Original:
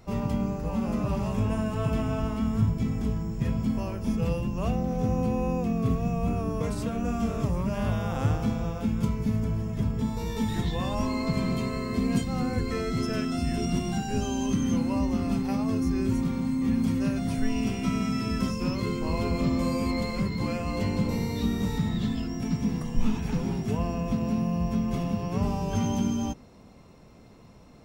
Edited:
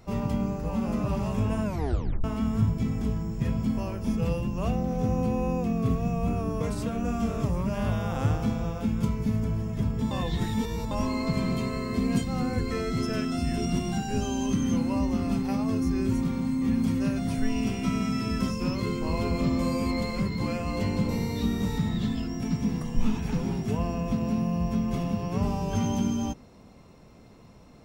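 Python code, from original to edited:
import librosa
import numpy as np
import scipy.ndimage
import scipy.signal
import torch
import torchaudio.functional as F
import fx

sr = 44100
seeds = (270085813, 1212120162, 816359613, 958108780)

y = fx.edit(x, sr, fx.tape_stop(start_s=1.64, length_s=0.6),
    fx.reverse_span(start_s=10.11, length_s=0.8), tone=tone)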